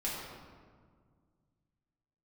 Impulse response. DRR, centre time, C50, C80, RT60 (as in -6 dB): -7.5 dB, 99 ms, -0.5 dB, 1.0 dB, 1.8 s